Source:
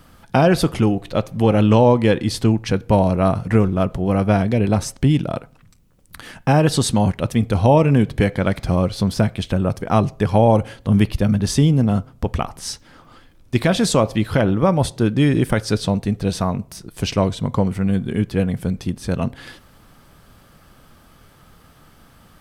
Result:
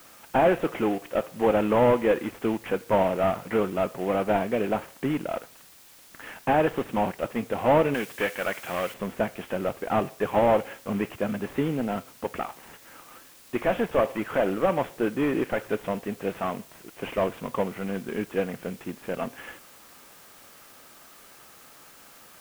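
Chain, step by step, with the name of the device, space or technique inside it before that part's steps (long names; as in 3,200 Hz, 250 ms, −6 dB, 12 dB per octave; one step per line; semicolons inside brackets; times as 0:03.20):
army field radio (band-pass filter 370–3,200 Hz; variable-slope delta modulation 16 kbit/s; white noise bed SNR 25 dB)
0:07.94–0:08.94: tilt shelving filter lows −7 dB, about 920 Hz
level −1 dB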